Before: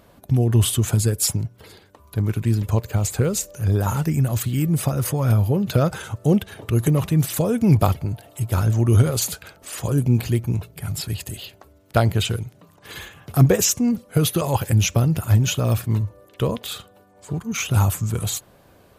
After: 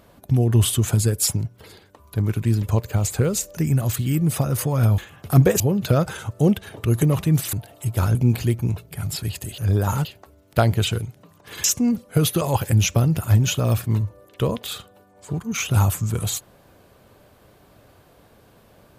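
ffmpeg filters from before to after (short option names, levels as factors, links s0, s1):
-filter_complex "[0:a]asplit=9[s0][s1][s2][s3][s4][s5][s6][s7][s8];[s0]atrim=end=3.572[s9];[s1]atrim=start=4.038:end=5.452[s10];[s2]atrim=start=13.018:end=13.642[s11];[s3]atrim=start=5.448:end=7.382[s12];[s4]atrim=start=8.078:end=8.702[s13];[s5]atrim=start=9.998:end=11.432[s14];[s6]atrim=start=3.568:end=4.042[s15];[s7]atrim=start=11.428:end=13.022[s16];[s8]atrim=start=13.638[s17];[s9][s10]acrossfade=d=0.004:c1=hsin:c2=hsin[s18];[s18][s11]acrossfade=d=0.004:c1=hsin:c2=hsin[s19];[s19][s12]acrossfade=d=0.004:c1=hsin:c2=hsin[s20];[s20][s13]acrossfade=d=0.004:c1=hsin:c2=hsin[s21];[s21][s14]acrossfade=d=0.004:c1=hsin:c2=hsin[s22];[s22][s15]acrossfade=d=0.004:c1=hsin:c2=hsin[s23];[s23][s16]acrossfade=d=0.004:c1=hsin:c2=hsin[s24];[s24][s17]acrossfade=d=0.004:c1=hsin:c2=hsin"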